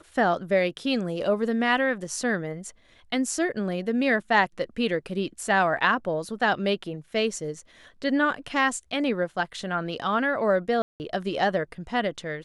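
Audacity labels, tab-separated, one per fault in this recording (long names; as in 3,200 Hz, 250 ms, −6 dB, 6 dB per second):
10.820000	11.000000	drop-out 179 ms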